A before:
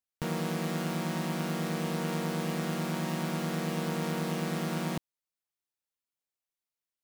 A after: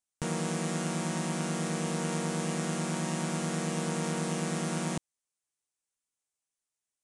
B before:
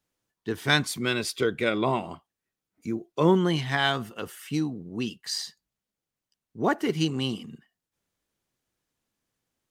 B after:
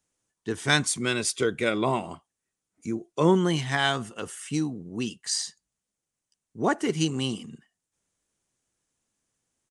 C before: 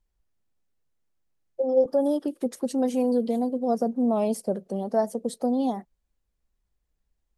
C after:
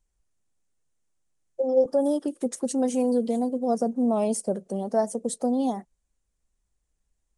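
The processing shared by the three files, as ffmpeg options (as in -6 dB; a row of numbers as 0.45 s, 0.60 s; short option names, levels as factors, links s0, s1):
-af "aresample=22050,aresample=44100,aexciter=amount=4:drive=1.2:freq=6100"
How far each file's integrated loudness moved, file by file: +0.5 LU, 0.0 LU, 0.0 LU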